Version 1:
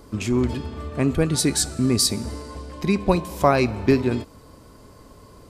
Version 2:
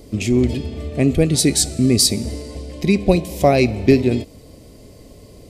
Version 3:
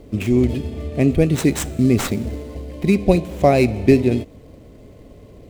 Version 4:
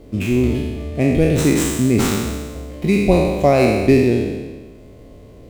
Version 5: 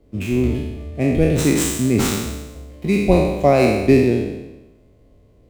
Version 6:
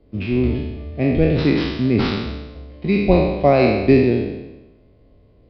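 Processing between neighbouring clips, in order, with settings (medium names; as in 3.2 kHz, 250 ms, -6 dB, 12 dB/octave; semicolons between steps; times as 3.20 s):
high-order bell 1.2 kHz -14 dB 1.1 oct; trim +5 dB
median filter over 9 samples
spectral sustain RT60 1.35 s; trim -1.5 dB
three bands expanded up and down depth 40%; trim -1.5 dB
resampled via 11.025 kHz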